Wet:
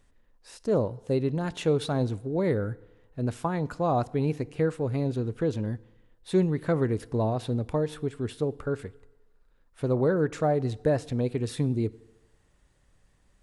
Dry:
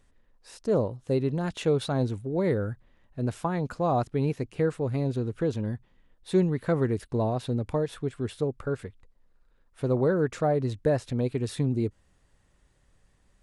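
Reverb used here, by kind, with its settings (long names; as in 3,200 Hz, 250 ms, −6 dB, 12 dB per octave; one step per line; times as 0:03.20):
feedback delay network reverb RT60 1.1 s, low-frequency decay 0.8×, high-frequency decay 0.8×, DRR 19 dB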